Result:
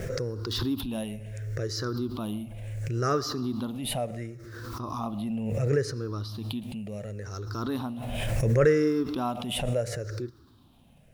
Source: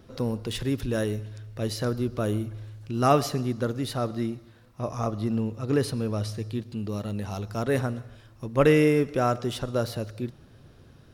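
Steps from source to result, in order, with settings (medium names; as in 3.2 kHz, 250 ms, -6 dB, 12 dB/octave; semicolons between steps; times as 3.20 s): drifting ripple filter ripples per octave 0.52, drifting -0.71 Hz, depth 17 dB; bit crusher 11-bit; swell ahead of each attack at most 27 dB/s; trim -8.5 dB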